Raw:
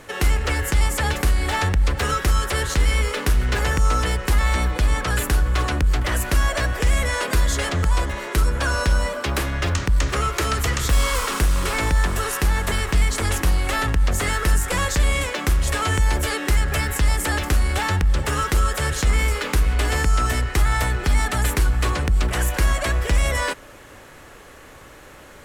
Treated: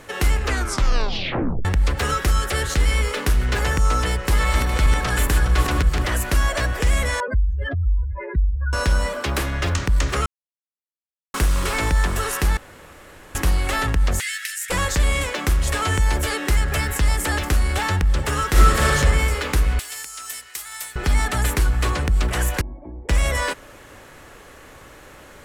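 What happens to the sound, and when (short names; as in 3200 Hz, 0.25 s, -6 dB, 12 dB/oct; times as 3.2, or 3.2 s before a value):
0.39 tape stop 1.26 s
2.27–2.8 Butterworth band-stop 990 Hz, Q 6.1
4.04–6.05 regenerating reverse delay 0.206 s, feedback 47%, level -5 dB
7.2–8.73 spectral contrast raised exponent 3.8
10.26–11.34 mute
12.57–13.35 room tone
14.2–14.7 steep high-pass 1700 Hz 48 dB/oct
18.48–18.93 reverb throw, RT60 1.7 s, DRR -5.5 dB
19.79–20.96 differentiator
22.61–23.09 vocal tract filter u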